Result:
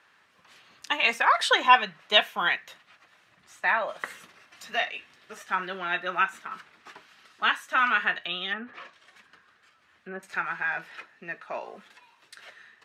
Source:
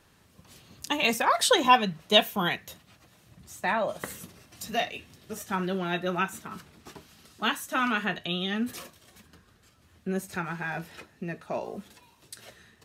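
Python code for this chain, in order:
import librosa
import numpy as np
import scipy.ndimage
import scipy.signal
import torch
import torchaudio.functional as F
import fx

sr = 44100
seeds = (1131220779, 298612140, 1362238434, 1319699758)

y = fx.env_lowpass_down(x, sr, base_hz=1500.0, full_db=-28.5, at=(8.51, 10.23))
y = fx.bandpass_q(y, sr, hz=1700.0, q=1.2)
y = F.gain(torch.from_numpy(y), 6.5).numpy()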